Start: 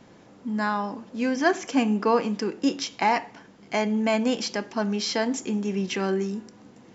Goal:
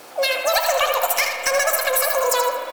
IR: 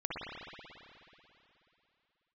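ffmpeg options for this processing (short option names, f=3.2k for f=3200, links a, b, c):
-filter_complex "[0:a]bandreject=f=760:w=14,asetrate=112455,aresample=44100,highpass=110,highshelf=f=5.3k:g=9.5,acompressor=threshold=-24dB:ratio=10,asoftclip=type=hard:threshold=-19dB,bandreject=f=233.8:t=h:w=4,bandreject=f=467.6:t=h:w=4,bandreject=f=701.4:t=h:w=4,bandreject=f=935.2:t=h:w=4,asplit=2[a][b];[b]asetrate=58866,aresample=44100,atempo=0.749154,volume=-13dB[c];[a][c]amix=inputs=2:normalize=0,aecho=1:1:79|158|237|316:0.447|0.134|0.0402|0.0121,asplit=2[d][e];[1:a]atrim=start_sample=2205[f];[e][f]afir=irnorm=-1:irlink=0,volume=-7dB[g];[d][g]amix=inputs=2:normalize=0,volume=5.5dB"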